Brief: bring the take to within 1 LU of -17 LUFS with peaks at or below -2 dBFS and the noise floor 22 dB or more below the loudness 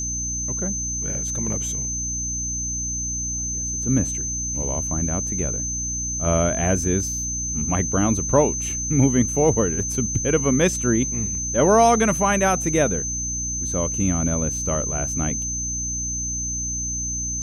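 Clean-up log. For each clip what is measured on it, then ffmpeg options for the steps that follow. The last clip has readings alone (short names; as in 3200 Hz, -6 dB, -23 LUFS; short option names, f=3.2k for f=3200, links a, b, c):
hum 60 Hz; harmonics up to 300 Hz; hum level -30 dBFS; steady tone 6200 Hz; tone level -25 dBFS; loudness -21.5 LUFS; peak -4.0 dBFS; loudness target -17.0 LUFS
-> -af "bandreject=f=60:t=h:w=4,bandreject=f=120:t=h:w=4,bandreject=f=180:t=h:w=4,bandreject=f=240:t=h:w=4,bandreject=f=300:t=h:w=4"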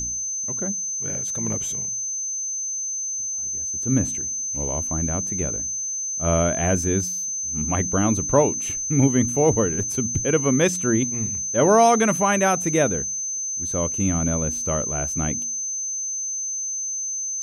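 hum none; steady tone 6200 Hz; tone level -25 dBFS
-> -af "bandreject=f=6.2k:w=30"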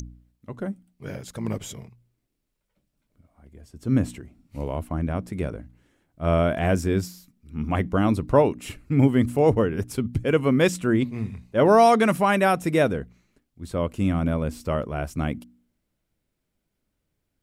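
steady tone none; loudness -23.5 LUFS; peak -5.0 dBFS; loudness target -17.0 LUFS
-> -af "volume=6.5dB,alimiter=limit=-2dB:level=0:latency=1"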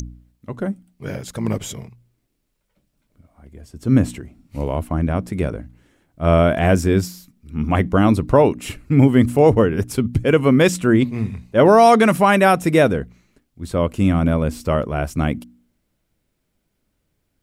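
loudness -17.5 LUFS; peak -2.0 dBFS; noise floor -72 dBFS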